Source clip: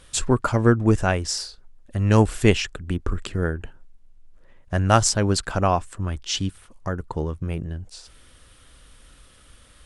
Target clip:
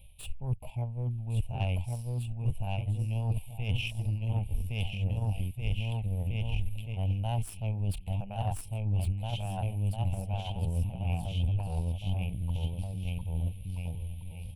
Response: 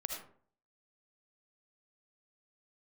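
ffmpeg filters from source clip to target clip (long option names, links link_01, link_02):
-filter_complex "[0:a]asuperstop=centerf=1400:order=8:qfactor=0.9,asplit=2[link_01][link_02];[link_02]aecho=0:1:750|1350|1830|2214|2521:0.631|0.398|0.251|0.158|0.1[link_03];[link_01][link_03]amix=inputs=2:normalize=0,asetrate=45938,aresample=44100,areverse,acompressor=threshold=-28dB:ratio=12,areverse,atempo=0.65,firequalizer=gain_entry='entry(110,0);entry(320,-27);entry(510,-15);entry(850,-7);entry(1400,-14);entry(2400,0);entry(4500,-24);entry(6400,-29);entry(9200,0)':delay=0.05:min_phase=1,aeval=exprs='0.0708*(cos(1*acos(clip(val(0)/0.0708,-1,1)))-cos(1*PI/2))+0.00316*(cos(4*acos(clip(val(0)/0.0708,-1,1)))-cos(4*PI/2))+0.00224*(cos(7*acos(clip(val(0)/0.0708,-1,1)))-cos(7*PI/2))+0.000447*(cos(8*acos(clip(val(0)/0.0708,-1,1)))-cos(8*PI/2))':channel_layout=same,equalizer=frequency=8700:width_type=o:width=0.48:gain=-12,volume=5dB"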